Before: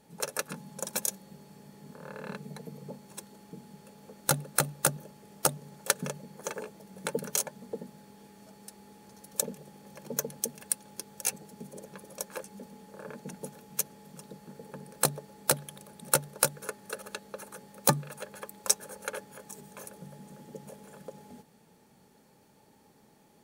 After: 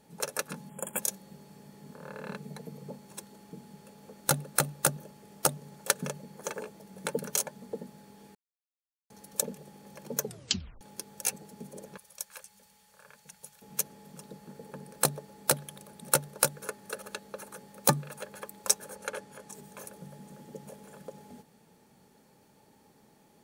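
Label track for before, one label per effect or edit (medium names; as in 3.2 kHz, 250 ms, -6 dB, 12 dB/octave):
0.690000	0.990000	spectral selection erased 3.4–6.9 kHz
8.350000	9.100000	mute
10.220000	10.220000	tape stop 0.59 s
11.970000	13.620000	amplifier tone stack bass-middle-treble 10-0-10
18.960000	19.550000	Bessel low-pass 11 kHz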